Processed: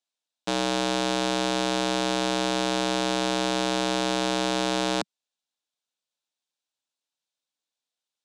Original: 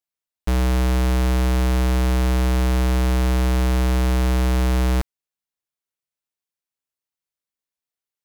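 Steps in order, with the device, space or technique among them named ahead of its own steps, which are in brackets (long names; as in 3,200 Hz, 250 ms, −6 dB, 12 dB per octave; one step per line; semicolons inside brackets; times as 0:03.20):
television speaker (loudspeaker in its box 180–8,400 Hz, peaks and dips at 190 Hz −9 dB, 380 Hz −9 dB, 1,200 Hz −5 dB, 2,000 Hz −8 dB, 3,700 Hz +6 dB)
level +4 dB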